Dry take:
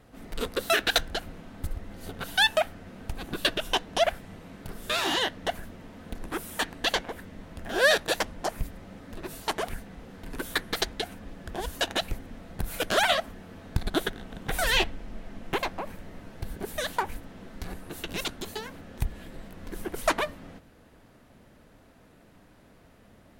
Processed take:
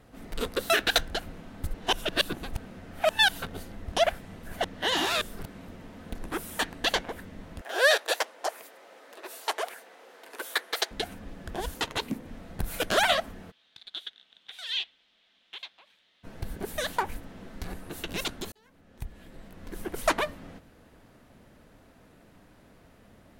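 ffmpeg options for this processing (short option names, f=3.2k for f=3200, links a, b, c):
-filter_complex "[0:a]asettb=1/sr,asplit=3[a][b][c];[a]atrim=end=7.614[d];[b]atrim=start=7.61:end=10.91,asetpts=PTS-STARTPTS,afade=t=in:d=0.004:c=qsin,afade=t=out:st=3.296:d=0.004:c=qsin,highpass=f=440:w=0.5412,highpass=f=440:w=1.3066[e];[c]atrim=start=10.906[f];[d][e]acrossfade=d=0.004:c1=hsin:c2=qsin[g];[g][f]acrossfade=d=0.004:c1=qsin:c2=hsin,asettb=1/sr,asplit=3[h][i][j];[h]atrim=end=11.744[k];[i]atrim=start=11.74:end=12.26,asetpts=PTS-STARTPTS,afade=t=in:d=0.004:c=qsin,afade=t=out:st=0.516:d=0.004:c=qsin,aeval=exprs='val(0)*sin(2*PI*240*n/s)':c=same[l];[j]atrim=start=12.256[m];[k][l]acrossfade=d=0.004:c1=hsin:c2=qsin[n];[n][m]acrossfade=d=0.004:c1=qsin:c2=hsin,asplit=3[o][p][q];[o]afade=t=out:st=13.5:d=0.02[r];[p]bandpass=f=3.5k:t=q:w=4.5,afade=t=in:st=13.5:d=0.02,afade=t=out:st=16.23:d=0.02[s];[q]afade=t=in:st=16.23:d=0.02[t];[r][s][t]amix=inputs=3:normalize=0,asplit=6[u][v][w][x][y][z];[u]atrim=end=1.742[aa];[v]atrim=start=1.738:end=3.922,asetpts=PTS-STARTPTS,areverse[ab];[w]atrim=start=3.918:end=4.432[ac];[x]atrim=start=4.428:end=5.682,asetpts=PTS-STARTPTS,areverse[ad];[y]atrim=start=5.678:end=18.52,asetpts=PTS-STARTPTS,afade=t=out:st=12.838:d=0.004:c=hsin[ae];[z]atrim=start=18.52,asetpts=PTS-STARTPTS,afade=t=in:d=1.5[af];[aa][ab]acrossfade=d=0.004:c1=hsin:c2=hsin[ag];[ag][ac]acrossfade=d=0.004:c1=hsin:c2=hsin[ah];[ah][ad]acrossfade=d=0.004:c1=hsin:c2=hsin[ai];[ae][af]concat=n=2:v=0:a=1[aj];[ai][aj]acrossfade=d=0.004:c1=hsin:c2=hsin"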